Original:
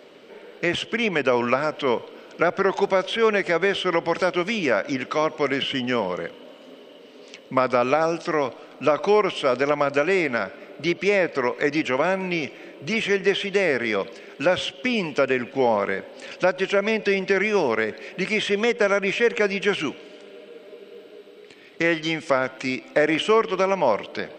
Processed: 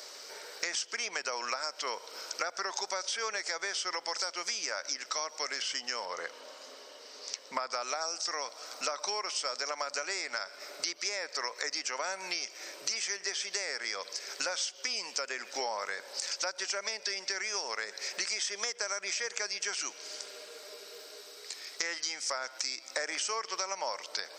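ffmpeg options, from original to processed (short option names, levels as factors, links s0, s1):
-filter_complex "[0:a]asettb=1/sr,asplit=3[s0][s1][s2];[s0]atrim=end=6.054[s3];[s1]atrim=start=6.05:end=7.73,asetpts=PTS-STARTPTS,afade=t=in:d=0.004:c=qsin,afade=t=out:st=1.676:d=0.004:c=qsin,aemphasis=mode=reproduction:type=50kf[s4];[s2]atrim=start=7.726[s5];[s3][s4]acrossfade=d=0.004:c1=hsin:c2=qsin[s6];[s6][s5]acrossfade=d=0.004:c1=qsin:c2=hsin,highpass=980,highshelf=f=4000:t=q:w=3:g=10.5,acompressor=threshold=0.0141:ratio=5,volume=1.68"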